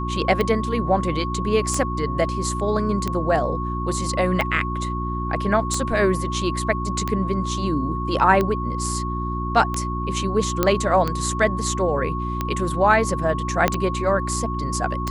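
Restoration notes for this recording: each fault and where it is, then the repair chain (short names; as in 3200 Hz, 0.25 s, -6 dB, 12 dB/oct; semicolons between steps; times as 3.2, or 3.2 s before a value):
hum 60 Hz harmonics 6 -27 dBFS
tick 45 rpm -10 dBFS
tone 1100 Hz -28 dBFS
10.63 pop -4 dBFS
13.68 pop -4 dBFS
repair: de-click; notch 1100 Hz, Q 30; de-hum 60 Hz, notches 6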